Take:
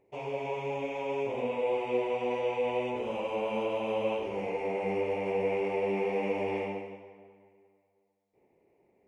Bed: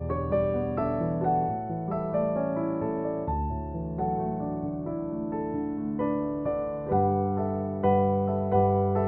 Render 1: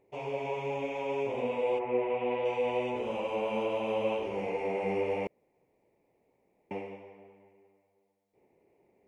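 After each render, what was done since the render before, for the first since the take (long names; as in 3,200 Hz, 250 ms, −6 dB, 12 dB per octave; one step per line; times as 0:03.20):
0:01.78–0:02.44: low-pass filter 2,000 Hz → 3,800 Hz 24 dB per octave
0:05.27–0:06.71: fill with room tone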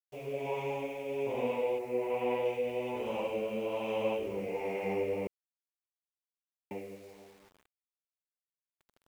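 rotating-speaker cabinet horn 1.2 Hz
bit reduction 10 bits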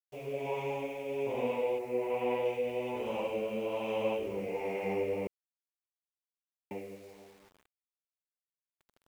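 no processing that can be heard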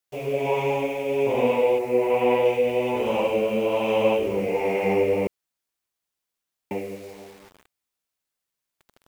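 level +11.5 dB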